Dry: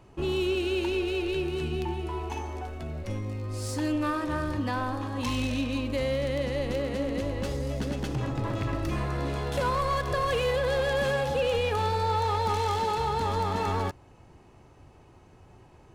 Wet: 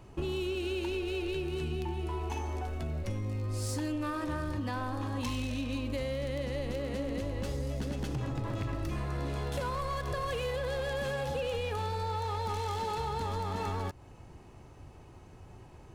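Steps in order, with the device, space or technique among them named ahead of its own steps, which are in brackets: ASMR close-microphone chain (low shelf 150 Hz +4.5 dB; compressor, threshold -31 dBFS, peak gain reduction 9 dB; high shelf 6000 Hz +4 dB)

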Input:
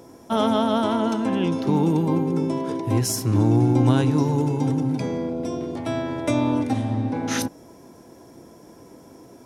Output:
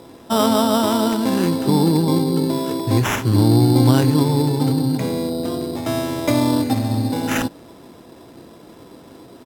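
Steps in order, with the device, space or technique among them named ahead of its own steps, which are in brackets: crushed at another speed (playback speed 1.25×; sample-and-hold 8×; playback speed 0.8×); gain +4 dB

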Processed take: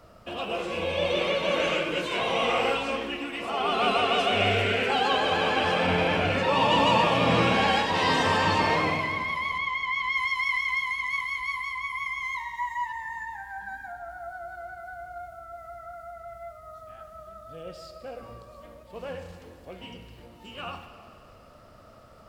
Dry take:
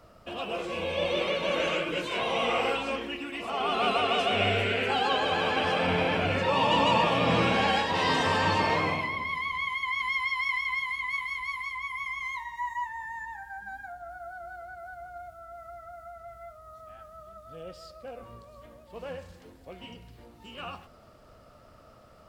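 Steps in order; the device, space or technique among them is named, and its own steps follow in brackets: saturated reverb return (on a send at -7.5 dB: reverb RT60 2.4 s, pre-delay 27 ms + soft clip -28 dBFS, distortion -9 dB); 9.58–10.17 on the sum: air absorption 67 m; gain +2 dB

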